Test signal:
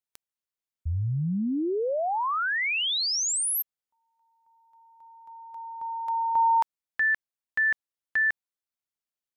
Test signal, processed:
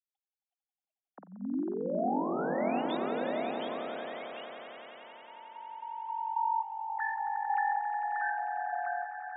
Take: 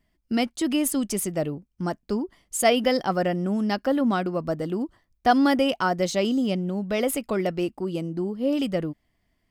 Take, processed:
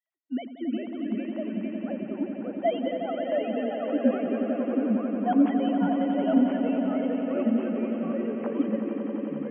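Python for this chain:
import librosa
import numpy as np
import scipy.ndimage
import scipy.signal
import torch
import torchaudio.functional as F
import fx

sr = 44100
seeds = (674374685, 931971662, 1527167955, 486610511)

y = fx.sine_speech(x, sr)
y = scipy.signal.sosfilt(scipy.signal.cheby1(6, 6, 190.0, 'highpass', fs=sr, output='sos'), y)
y = fx.echo_pitch(y, sr, ms=355, semitones=-2, count=2, db_per_echo=-3.0)
y = fx.echo_swell(y, sr, ms=90, loudest=5, wet_db=-10)
y = fx.dynamic_eq(y, sr, hz=260.0, q=1.4, threshold_db=-37.0, ratio=5.0, max_db=6)
y = F.gain(torch.from_numpy(y), -9.0).numpy()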